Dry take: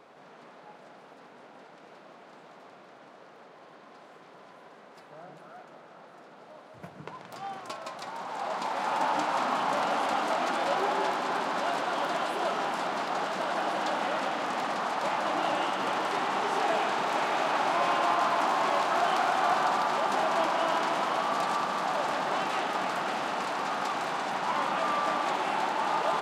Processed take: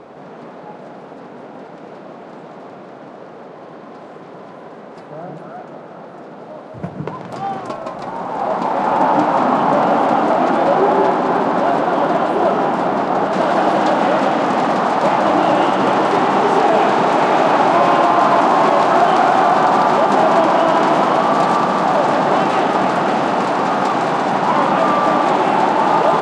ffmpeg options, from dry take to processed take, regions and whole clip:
-filter_complex "[0:a]asettb=1/sr,asplit=3[a][b][c];[a]atrim=end=7.694[d];[b]atrim=start=7.69:end=13.33,asetpts=PTS-STARTPTS,afade=t=in:d=0.004:c=qsin,afade=t=out:st=5.636:d=0.004:c=qsin,highshelf=f=2.4k:g=-7.5,aeval=exprs='sgn(val(0))*max(abs(val(0))-0.00133,0)':c=same[e];[c]atrim=start=13.326[f];[d][e]acrossfade=d=0.004:c1=hsin:c2=qsin[g];[g][f]acrossfade=d=0.004:c1=qsin:c2=hsin,lowpass=f=10k:w=0.5412,lowpass=f=10k:w=1.3066,tiltshelf=f=920:g=7,alimiter=level_in=16.5dB:limit=-1dB:release=50:level=0:latency=1,volume=-2.5dB"

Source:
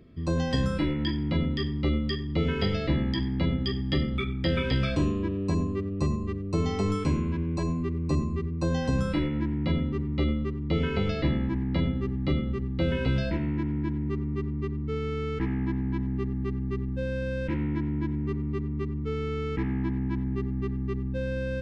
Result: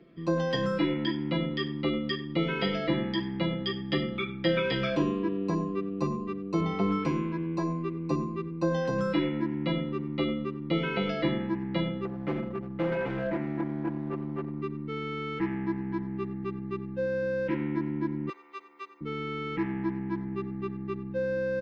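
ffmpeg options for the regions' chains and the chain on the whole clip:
-filter_complex "[0:a]asettb=1/sr,asplit=3[a][b][c];[a]atrim=end=6.604[d];[b]atrim=start=6.6:end=7.05,asetpts=PTS-STARTPTS,afade=t=in:d=0.004:c=qsin,afade=t=out:st=0.446:d=0.004:c=qsin,lowpass=3.5k,equalizer=f=93:t=o:w=1.9:g=6.5[e];[c]atrim=start=7.046[f];[d][e]acrossfade=d=0.004:c1=hsin:c2=qsin[g];[g][f]acrossfade=d=0.004:c1=qsin:c2=hsin,asettb=1/sr,asplit=3[h][i][j];[h]atrim=end=12.054[k];[i]atrim=start=12.05:end=14.62,asetpts=PTS-STARTPTS,afade=t=in:d=0.004:c=qsin,afade=t=out:st=2.566:d=0.004:c=qsin,lowpass=f=2.2k:w=0.5412,lowpass=f=2.2k:w=1.3066,volume=24.5dB,asoftclip=hard,volume=-24.5dB[l];[j]atrim=start=14.616[m];[k][l]acrossfade=d=0.004:c1=hsin:c2=qsin[n];[n][m]acrossfade=d=0.004:c1=qsin:c2=hsin,asettb=1/sr,asplit=3[o][p][q];[o]atrim=end=18.294[r];[p]atrim=start=18.29:end=19.01,asetpts=PTS-STARTPTS,afade=t=in:d=0.004:c=qsin,afade=t=out:st=0.716:d=0.004:c=qsin,highpass=f=570:w=0.5412,highpass=f=570:w=1.3066,aemphasis=mode=production:type=bsi[s];[q]atrim=start=19.006[t];[r][s]acrossfade=d=0.004:c1=hsin:c2=qsin[u];[u][t]acrossfade=d=0.004:c1=qsin:c2=hsin,acrossover=split=190 4700:gain=0.126 1 0.158[v][w][x];[v][w][x]amix=inputs=3:normalize=0,aecho=1:1:5.9:0.75"

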